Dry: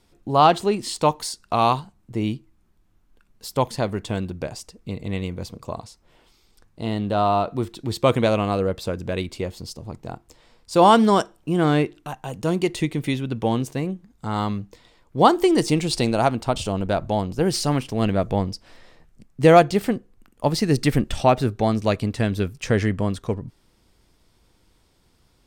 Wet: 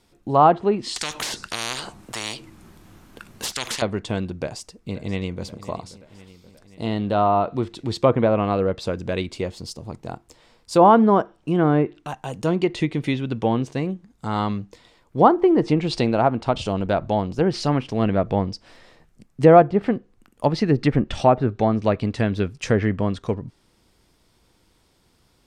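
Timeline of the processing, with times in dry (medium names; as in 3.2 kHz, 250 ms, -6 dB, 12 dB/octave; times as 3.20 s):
0.96–3.82 s: spectrum-flattening compressor 10:1
4.38–5.44 s: echo throw 530 ms, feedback 65%, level -16.5 dB
whole clip: bass shelf 65 Hz -7 dB; low-pass that closes with the level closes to 1.3 kHz, closed at -14.5 dBFS; trim +1.5 dB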